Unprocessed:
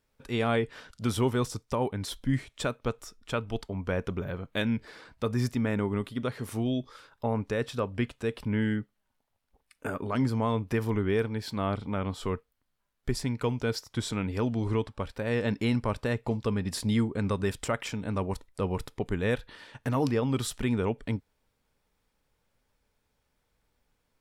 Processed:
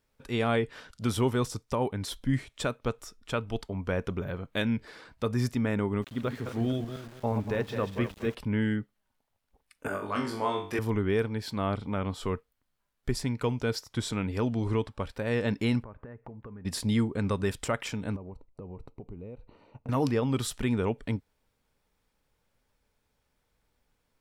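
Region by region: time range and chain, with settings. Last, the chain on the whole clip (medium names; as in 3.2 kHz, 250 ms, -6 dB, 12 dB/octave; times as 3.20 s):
6.02–8.35 s: backward echo that repeats 118 ms, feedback 56%, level -7 dB + distance through air 120 m + small samples zeroed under -47 dBFS
9.88–10.79 s: high-pass 410 Hz 6 dB/octave + flutter echo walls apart 3.5 m, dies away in 0.41 s
15.83–16.65 s: low-pass 1.8 kHz 24 dB/octave + compression 8:1, threshold -41 dBFS
18.16–19.89 s: boxcar filter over 26 samples + compression 10:1, threshold -38 dBFS
whole clip: none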